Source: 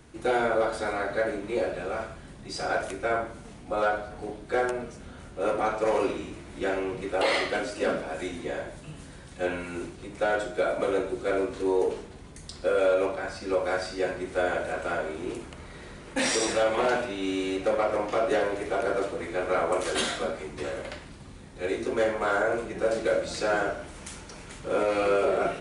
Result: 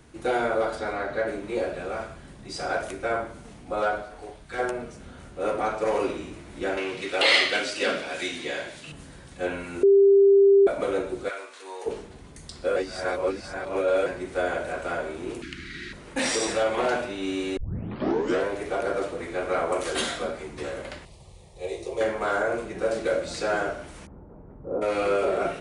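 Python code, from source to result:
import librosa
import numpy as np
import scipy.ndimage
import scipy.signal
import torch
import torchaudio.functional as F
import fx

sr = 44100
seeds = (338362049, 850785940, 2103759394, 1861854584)

y = fx.air_absorb(x, sr, metres=64.0, at=(0.75, 1.28))
y = fx.peak_eq(y, sr, hz=fx.line((4.02, 86.0), (4.58, 550.0)), db=-14.5, octaves=1.5, at=(4.02, 4.58), fade=0.02)
y = fx.weighting(y, sr, curve='D', at=(6.77, 8.92))
y = fx.highpass(y, sr, hz=1100.0, slope=12, at=(11.28, 11.85), fade=0.02)
y = fx.curve_eq(y, sr, hz=(110.0, 350.0, 530.0, 810.0, 1600.0, 4800.0, 10000.0), db=(0, 8, -26, -24, 11, 10, -4), at=(15.42, 15.93))
y = fx.fixed_phaser(y, sr, hz=620.0, stages=4, at=(21.05, 22.01))
y = fx.bessel_lowpass(y, sr, hz=620.0, order=4, at=(24.05, 24.81), fade=0.02)
y = fx.edit(y, sr, fx.bleep(start_s=9.83, length_s=0.84, hz=396.0, db=-12.5),
    fx.reverse_span(start_s=12.76, length_s=1.3),
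    fx.tape_start(start_s=17.57, length_s=0.9), tone=tone)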